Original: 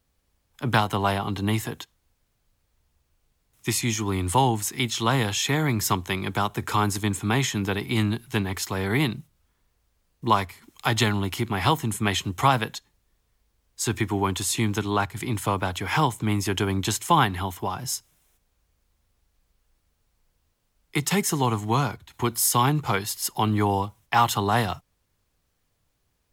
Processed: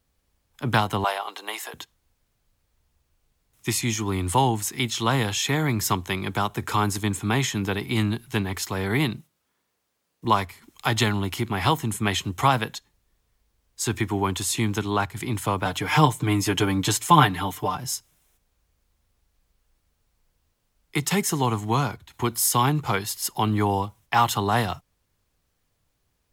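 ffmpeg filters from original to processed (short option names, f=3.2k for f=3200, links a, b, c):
-filter_complex "[0:a]asettb=1/sr,asplit=3[a][b][c];[a]atrim=end=1.044[d];[b]atrim=start=1.04:end=1.74,asetpts=PTS-STARTPTS,afade=t=in:d=0.004:c=qsin,afade=t=out:st=0.696:d=0.004:c=qsin,highpass=f=520:w=0.5412,highpass=f=520:w=1.3066[e];[c]atrim=start=1.736[f];[d][e]acrossfade=d=0.004:c1=hsin:c2=qsin[g];[g][f]acrossfade=d=0.004:c1=qsin:c2=hsin,asettb=1/sr,asplit=3[h][i][j];[h]atrim=end=9.174[k];[i]atrim=start=9.17:end=10.25,asetpts=PTS-STARTPTS,afade=t=in:d=0.004:c=qsin,afade=t=out:st=1.076:d=0.004:c=qsin,highpass=210[l];[j]atrim=start=10.246[m];[k][l]acrossfade=d=0.004:c1=hsin:c2=qsin[n];[n][m]acrossfade=d=0.004:c1=qsin:c2=hsin,asettb=1/sr,asplit=3[o][p][q];[o]atrim=end=15.654[r];[p]atrim=start=15.65:end=17.77,asetpts=PTS-STARTPTS,afade=t=in:d=0.004:c=qsin,afade=t=out:st=2.116:d=0.004:c=qsin,aecho=1:1:6.7:0.96,atrim=end_sample=93492[s];[q]atrim=start=17.766[t];[r][s]acrossfade=d=0.004:c1=hsin:c2=qsin[u];[u][t]acrossfade=d=0.004:c1=qsin:c2=hsin"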